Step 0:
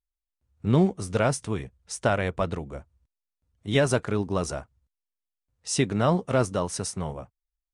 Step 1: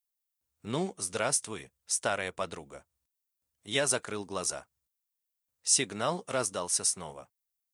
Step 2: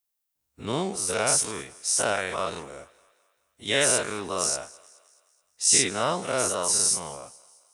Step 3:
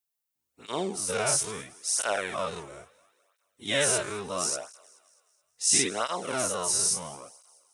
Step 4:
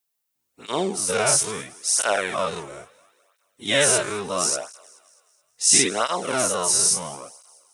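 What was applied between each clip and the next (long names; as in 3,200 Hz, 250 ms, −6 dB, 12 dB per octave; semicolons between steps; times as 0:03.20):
RIAA equalisation recording; level −5.5 dB
every bin's largest magnitude spread in time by 120 ms; feedback echo with a high-pass in the loop 213 ms, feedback 51%, high-pass 370 Hz, level −22 dB
through-zero flanger with one copy inverted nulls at 0.74 Hz, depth 4.4 ms
parametric band 75 Hz −6.5 dB 0.82 octaves; level +6.5 dB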